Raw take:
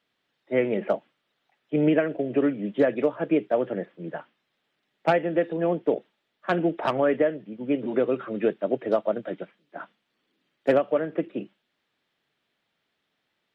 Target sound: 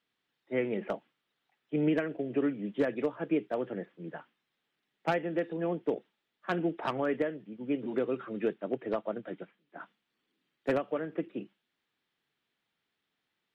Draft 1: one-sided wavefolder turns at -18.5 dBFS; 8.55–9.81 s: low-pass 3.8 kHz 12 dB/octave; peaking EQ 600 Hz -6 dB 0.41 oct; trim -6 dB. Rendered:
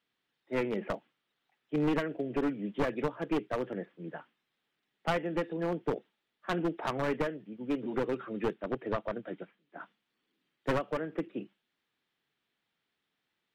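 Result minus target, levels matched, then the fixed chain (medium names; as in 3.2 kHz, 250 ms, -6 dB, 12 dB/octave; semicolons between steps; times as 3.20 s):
one-sided wavefolder: distortion +19 dB
one-sided wavefolder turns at -12.5 dBFS; 8.55–9.81 s: low-pass 3.8 kHz 12 dB/octave; peaking EQ 600 Hz -6 dB 0.41 oct; trim -6 dB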